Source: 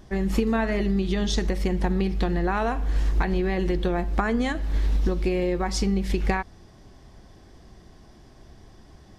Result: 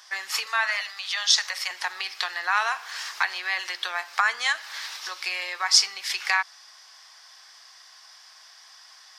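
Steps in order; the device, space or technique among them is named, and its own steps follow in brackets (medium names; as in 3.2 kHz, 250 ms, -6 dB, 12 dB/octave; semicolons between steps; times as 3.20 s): 0.46–1.71 s: elliptic high-pass 490 Hz, stop band 40 dB; headphones lying on a table (high-pass 1.1 kHz 24 dB/octave; peaking EQ 5.1 kHz +8 dB 0.58 oct); trim +8.5 dB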